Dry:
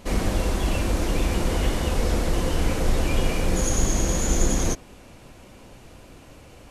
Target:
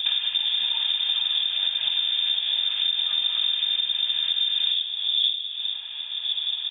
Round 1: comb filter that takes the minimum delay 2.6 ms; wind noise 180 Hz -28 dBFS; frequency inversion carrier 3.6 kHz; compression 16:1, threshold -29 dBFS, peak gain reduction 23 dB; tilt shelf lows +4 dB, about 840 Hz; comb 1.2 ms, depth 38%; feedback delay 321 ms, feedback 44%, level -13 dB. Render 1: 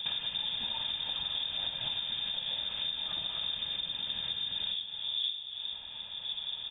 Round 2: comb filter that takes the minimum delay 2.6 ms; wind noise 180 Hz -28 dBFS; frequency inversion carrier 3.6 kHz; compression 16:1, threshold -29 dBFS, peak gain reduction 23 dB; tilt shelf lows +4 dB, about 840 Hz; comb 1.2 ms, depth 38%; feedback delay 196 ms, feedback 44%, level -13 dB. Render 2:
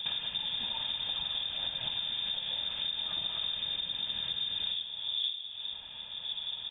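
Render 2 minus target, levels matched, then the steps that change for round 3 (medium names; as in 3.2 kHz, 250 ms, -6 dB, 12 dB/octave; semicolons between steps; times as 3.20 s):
1 kHz band +9.0 dB
change: tilt shelf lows -8 dB, about 840 Hz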